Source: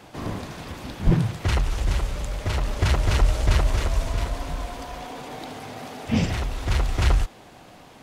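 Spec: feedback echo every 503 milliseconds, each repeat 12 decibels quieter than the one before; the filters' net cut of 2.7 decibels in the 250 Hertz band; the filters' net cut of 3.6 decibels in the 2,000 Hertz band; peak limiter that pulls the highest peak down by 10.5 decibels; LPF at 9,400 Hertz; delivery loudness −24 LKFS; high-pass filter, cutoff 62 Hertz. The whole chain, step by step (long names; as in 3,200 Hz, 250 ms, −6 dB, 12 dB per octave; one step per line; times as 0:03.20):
high-pass filter 62 Hz
low-pass filter 9,400 Hz
parametric band 250 Hz −4 dB
parametric band 2,000 Hz −4.5 dB
brickwall limiter −19.5 dBFS
repeating echo 503 ms, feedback 25%, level −12 dB
level +8 dB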